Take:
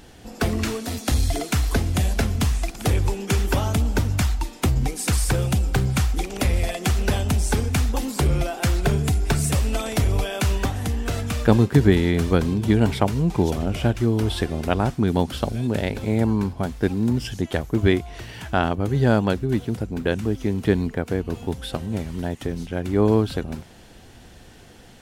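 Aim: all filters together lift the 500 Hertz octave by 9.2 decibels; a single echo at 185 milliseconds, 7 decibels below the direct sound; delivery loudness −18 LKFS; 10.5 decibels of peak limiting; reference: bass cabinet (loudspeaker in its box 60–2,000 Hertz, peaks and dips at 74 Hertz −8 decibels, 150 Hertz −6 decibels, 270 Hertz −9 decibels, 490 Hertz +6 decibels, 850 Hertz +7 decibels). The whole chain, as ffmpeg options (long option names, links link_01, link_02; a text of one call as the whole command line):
ffmpeg -i in.wav -af "equalizer=frequency=500:width_type=o:gain=8,alimiter=limit=-9.5dB:level=0:latency=1,highpass=frequency=60:width=0.5412,highpass=frequency=60:width=1.3066,equalizer=frequency=74:width_type=q:width=4:gain=-8,equalizer=frequency=150:width_type=q:width=4:gain=-6,equalizer=frequency=270:width_type=q:width=4:gain=-9,equalizer=frequency=490:width_type=q:width=4:gain=6,equalizer=frequency=850:width_type=q:width=4:gain=7,lowpass=frequency=2000:width=0.5412,lowpass=frequency=2000:width=1.3066,aecho=1:1:185:0.447,volume=4dB" out.wav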